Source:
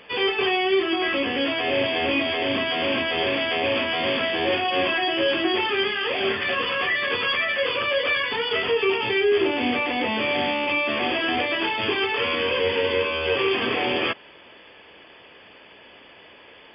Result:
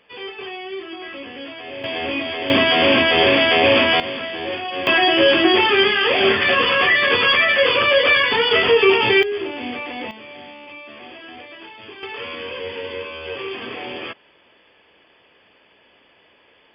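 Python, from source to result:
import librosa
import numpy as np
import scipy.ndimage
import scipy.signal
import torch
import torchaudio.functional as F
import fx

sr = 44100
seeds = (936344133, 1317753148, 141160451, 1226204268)

y = fx.gain(x, sr, db=fx.steps((0.0, -10.0), (1.84, -1.5), (2.5, 9.0), (4.0, -3.5), (4.87, 8.0), (9.23, -5.0), (10.11, -15.0), (12.03, -7.0)))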